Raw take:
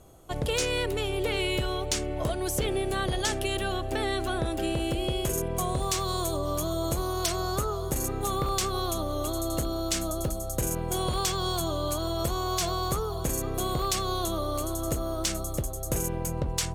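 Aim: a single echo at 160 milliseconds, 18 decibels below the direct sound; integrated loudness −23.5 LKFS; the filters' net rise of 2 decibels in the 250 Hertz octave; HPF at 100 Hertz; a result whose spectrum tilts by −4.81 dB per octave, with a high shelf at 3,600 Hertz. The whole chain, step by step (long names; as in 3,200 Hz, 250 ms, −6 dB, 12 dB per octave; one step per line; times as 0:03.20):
high-pass filter 100 Hz
parametric band 250 Hz +3.5 dB
high-shelf EQ 3,600 Hz −7 dB
single-tap delay 160 ms −18 dB
level +6.5 dB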